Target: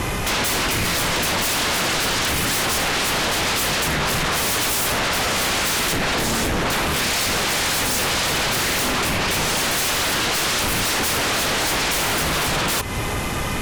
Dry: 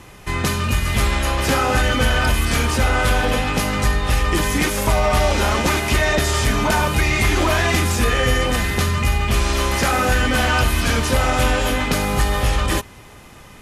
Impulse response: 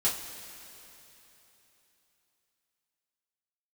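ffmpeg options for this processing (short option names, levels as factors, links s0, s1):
-filter_complex "[0:a]asettb=1/sr,asplit=3[s0][s1][s2];[s0]atrim=end=5.854[s3];[s1]atrim=start=5.85:end=6.86,asetpts=PTS-STARTPTS,afade=t=in:d=0.004:c=qsin,afade=t=out:st=1.006:d=0.004:c=qsin,lowshelf=f=160:g=11.5[s4];[s2]atrim=start=6.856[s5];[s3][s4]acrossfade=d=0.004:c1=hsin:c2=qsin[s6];[s6][s5]acrossfade=d=0.004:c1=qsin:c2=hsin,acompressor=threshold=0.0501:ratio=8,aeval=exprs='0.126*sin(PI/2*6.31*val(0)/0.126)':c=same"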